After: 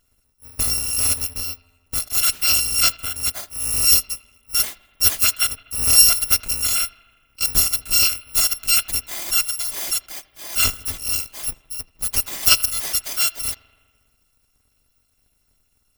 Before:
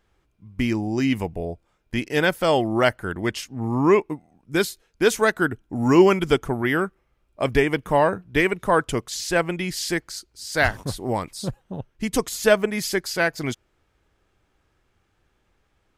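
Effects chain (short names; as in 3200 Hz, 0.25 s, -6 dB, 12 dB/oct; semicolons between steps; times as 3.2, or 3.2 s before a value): FFT order left unsorted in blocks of 256 samples; on a send: analogue delay 81 ms, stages 2048, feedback 70%, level -21.5 dB; on the sum: gain +1.5 dB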